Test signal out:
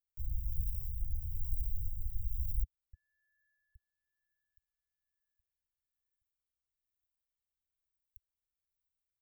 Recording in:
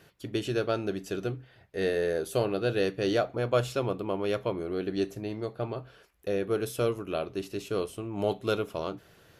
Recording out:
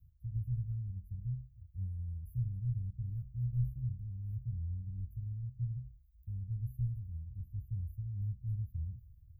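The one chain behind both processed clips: inverse Chebyshev band-stop 360–8100 Hz, stop band 70 dB; rotary cabinet horn 1.1 Hz; trim +16 dB

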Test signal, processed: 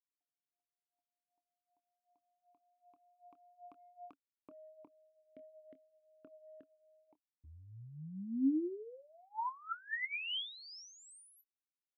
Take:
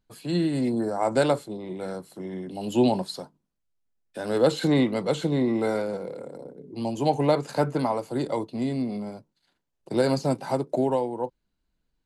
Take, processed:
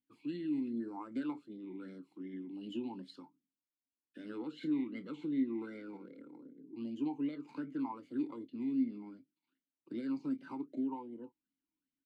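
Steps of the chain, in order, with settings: compression 6:1, threshold -24 dBFS; doubling 26 ms -12.5 dB; talking filter i-u 2.6 Hz; trim -1 dB

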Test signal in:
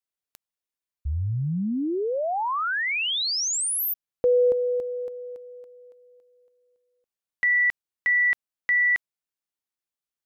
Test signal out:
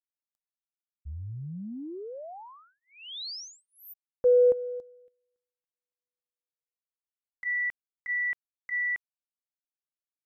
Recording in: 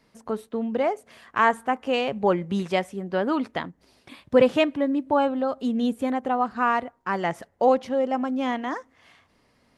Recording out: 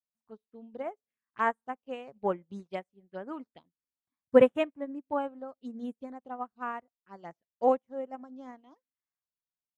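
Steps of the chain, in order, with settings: touch-sensitive phaser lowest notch 410 Hz, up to 4.7 kHz, full sweep at -19.5 dBFS; upward expansion 2.5:1, over -42 dBFS

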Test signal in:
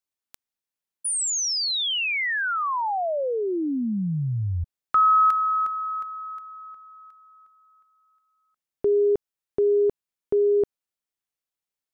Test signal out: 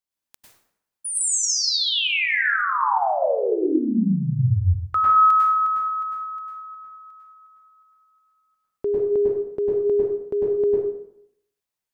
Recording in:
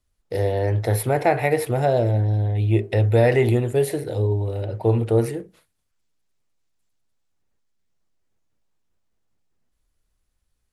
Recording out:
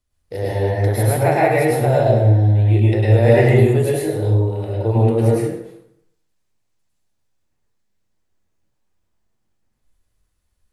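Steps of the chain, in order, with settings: plate-style reverb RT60 0.75 s, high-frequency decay 0.7×, pre-delay 90 ms, DRR -5.5 dB; trim -2.5 dB

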